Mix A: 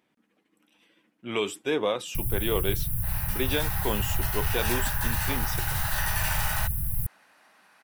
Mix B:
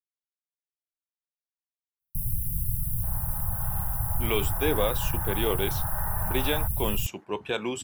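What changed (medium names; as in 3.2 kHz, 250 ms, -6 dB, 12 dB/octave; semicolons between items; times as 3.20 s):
speech: entry +2.95 s; second sound: add low-pass 1.2 kHz 24 dB/octave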